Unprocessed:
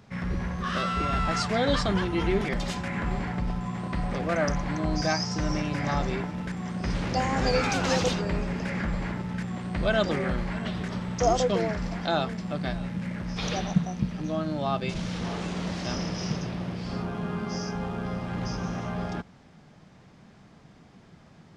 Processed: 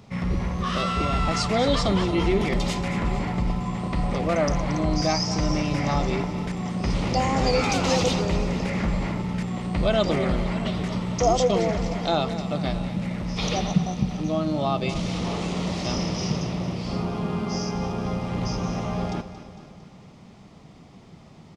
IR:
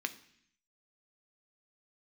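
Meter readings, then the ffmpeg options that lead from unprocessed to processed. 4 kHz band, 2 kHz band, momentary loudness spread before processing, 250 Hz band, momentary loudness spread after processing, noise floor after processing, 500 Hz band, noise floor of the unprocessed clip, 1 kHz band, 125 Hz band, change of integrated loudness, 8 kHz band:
+4.0 dB, 0.0 dB, 8 LU, +4.0 dB, 7 LU, -48 dBFS, +4.0 dB, -54 dBFS, +3.0 dB, +4.0 dB, +3.5 dB, +4.5 dB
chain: -filter_complex "[0:a]equalizer=f=1.6k:w=4.7:g=-12,asplit=2[a][b];[b]alimiter=limit=-20dB:level=0:latency=1,volume=-2.5dB[c];[a][c]amix=inputs=2:normalize=0,aecho=1:1:227|454|681|908|1135|1362:0.224|0.128|0.0727|0.0415|0.0236|0.0135"

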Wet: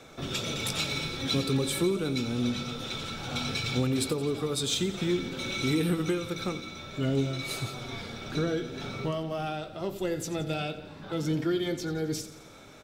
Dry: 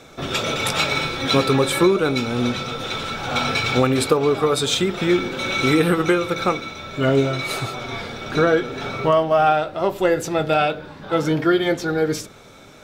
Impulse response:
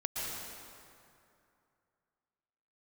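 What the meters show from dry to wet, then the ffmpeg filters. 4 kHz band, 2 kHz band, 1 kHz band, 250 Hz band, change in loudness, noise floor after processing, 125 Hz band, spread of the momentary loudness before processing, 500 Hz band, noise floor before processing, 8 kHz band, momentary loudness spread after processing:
-8.0 dB, -13.0 dB, -17.0 dB, -8.5 dB, -10.5 dB, -48 dBFS, -6.0 dB, 9 LU, -13.0 dB, -44 dBFS, -6.0 dB, 9 LU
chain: -filter_complex "[0:a]acrossover=split=350|3000[a][b][c];[b]acompressor=threshold=-42dB:ratio=2[d];[a][d][c]amix=inputs=3:normalize=0,asoftclip=type=tanh:threshold=-10.5dB,aecho=1:1:87|174|261|348|435|522:0.178|0.105|0.0619|0.0365|0.0215|0.0127,volume=-5.5dB"

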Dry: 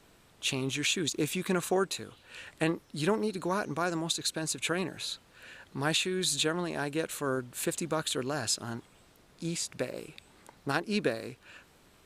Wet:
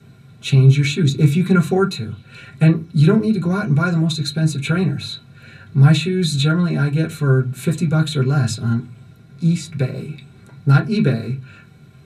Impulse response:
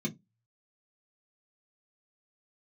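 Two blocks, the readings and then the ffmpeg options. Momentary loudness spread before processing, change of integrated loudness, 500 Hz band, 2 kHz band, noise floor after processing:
14 LU, +14.0 dB, +9.0 dB, +7.5 dB, -46 dBFS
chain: -filter_complex "[1:a]atrim=start_sample=2205,asetrate=27783,aresample=44100[a];[0:a][a]afir=irnorm=-1:irlink=0,volume=2dB"

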